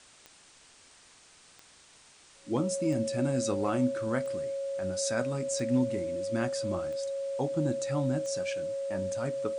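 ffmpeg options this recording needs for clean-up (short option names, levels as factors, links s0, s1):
-af "adeclick=t=4,bandreject=f=550:w=30,afwtdn=0.002"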